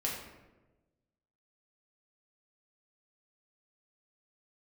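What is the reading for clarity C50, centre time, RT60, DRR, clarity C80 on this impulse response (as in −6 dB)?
3.0 dB, 50 ms, 1.2 s, −4.0 dB, 5.5 dB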